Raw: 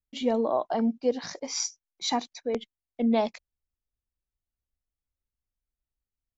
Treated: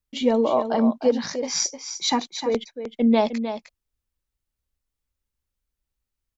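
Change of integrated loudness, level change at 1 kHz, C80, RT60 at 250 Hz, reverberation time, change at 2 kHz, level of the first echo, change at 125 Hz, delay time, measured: +6.0 dB, +5.0 dB, none, none, none, +6.5 dB, -9.5 dB, n/a, 0.307 s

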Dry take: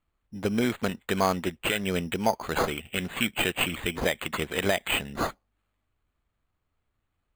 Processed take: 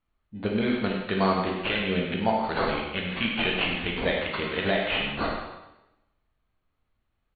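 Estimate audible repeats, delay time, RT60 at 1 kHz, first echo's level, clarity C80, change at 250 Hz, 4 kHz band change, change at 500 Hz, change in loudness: 1, 99 ms, 0.95 s, -9.0 dB, 4.0 dB, +2.0 dB, +1.5 dB, +1.5 dB, +1.0 dB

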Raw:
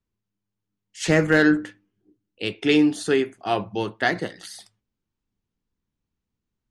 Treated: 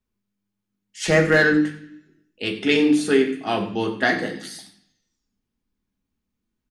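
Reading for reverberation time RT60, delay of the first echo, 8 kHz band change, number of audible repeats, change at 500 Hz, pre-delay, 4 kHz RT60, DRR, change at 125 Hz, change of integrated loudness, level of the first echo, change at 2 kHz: 0.65 s, 91 ms, +1.5 dB, 1, +2.5 dB, 3 ms, 1.1 s, 1.0 dB, +0.5 dB, +1.5 dB, -15.5 dB, +3.0 dB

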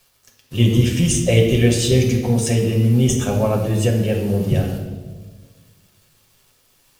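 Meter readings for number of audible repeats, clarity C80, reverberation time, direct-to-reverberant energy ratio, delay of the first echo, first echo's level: none, 7.0 dB, 1.5 s, 0.0 dB, none, none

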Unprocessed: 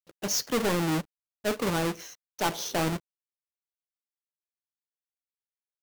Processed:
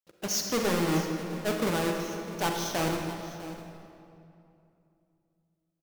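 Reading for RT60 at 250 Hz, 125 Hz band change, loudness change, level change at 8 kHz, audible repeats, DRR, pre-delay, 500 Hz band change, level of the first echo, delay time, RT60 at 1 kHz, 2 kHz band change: 3.1 s, 0.0 dB, -1.0 dB, -0.5 dB, 1, 2.0 dB, 37 ms, +0.5 dB, -16.0 dB, 0.653 s, 2.7 s, 0.0 dB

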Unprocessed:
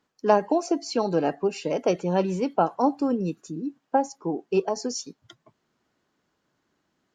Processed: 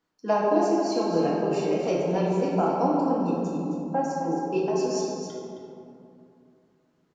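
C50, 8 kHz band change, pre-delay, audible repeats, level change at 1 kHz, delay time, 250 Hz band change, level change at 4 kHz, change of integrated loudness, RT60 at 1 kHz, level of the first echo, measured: -1.5 dB, -2.5 dB, 4 ms, 1, -0.5 dB, 0.266 s, +1.0 dB, -2.0 dB, 0.0 dB, 2.5 s, -8.0 dB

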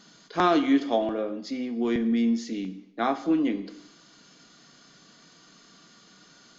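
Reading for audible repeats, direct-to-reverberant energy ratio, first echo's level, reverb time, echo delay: none, 10.0 dB, none, 0.85 s, none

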